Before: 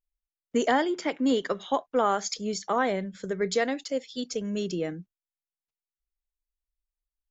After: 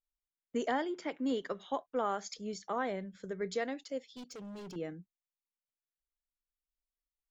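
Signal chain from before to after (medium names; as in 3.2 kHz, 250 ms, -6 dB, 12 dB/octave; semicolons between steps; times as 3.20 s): treble shelf 4.3 kHz -5.5 dB; 4.08–4.76 s: hard clipper -34.5 dBFS, distortion -17 dB; trim -9 dB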